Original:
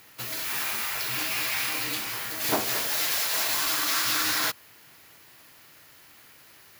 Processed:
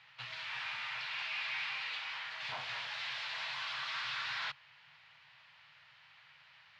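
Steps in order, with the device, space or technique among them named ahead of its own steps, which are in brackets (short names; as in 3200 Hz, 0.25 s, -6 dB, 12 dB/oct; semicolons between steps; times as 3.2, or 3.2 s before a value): 1.05–2.42 HPF 400 Hz 12 dB/oct; scooped metal amplifier (tube stage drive 30 dB, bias 0.5; speaker cabinet 110–3500 Hz, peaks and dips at 140 Hz +9 dB, 380 Hz -9 dB, 910 Hz +5 dB; passive tone stack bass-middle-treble 10-0-10); bell 6900 Hz -2.5 dB; gain +3 dB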